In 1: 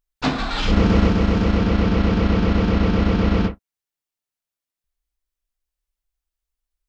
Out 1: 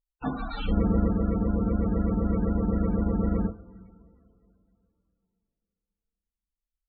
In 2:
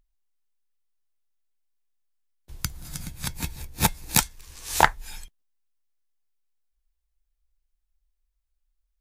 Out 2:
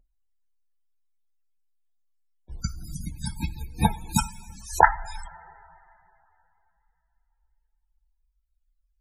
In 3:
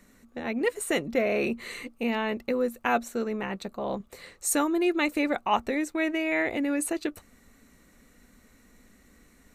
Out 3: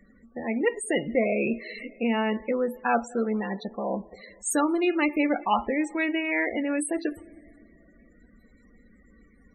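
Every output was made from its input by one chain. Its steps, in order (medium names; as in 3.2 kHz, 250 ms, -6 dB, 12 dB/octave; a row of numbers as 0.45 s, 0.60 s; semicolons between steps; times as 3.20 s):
two-slope reverb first 0.31 s, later 3 s, from -17 dB, DRR 10 dB; loudest bins only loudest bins 32; normalise loudness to -27 LUFS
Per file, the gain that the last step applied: -8.5 dB, +3.0 dB, +1.5 dB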